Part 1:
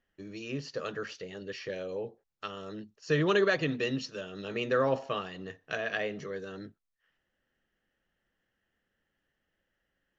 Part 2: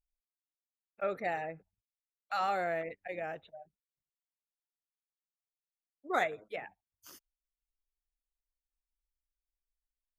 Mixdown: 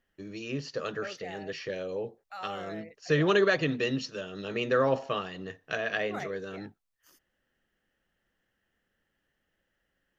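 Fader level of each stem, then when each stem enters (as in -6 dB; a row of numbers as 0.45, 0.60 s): +2.0, -8.5 dB; 0.00, 0.00 s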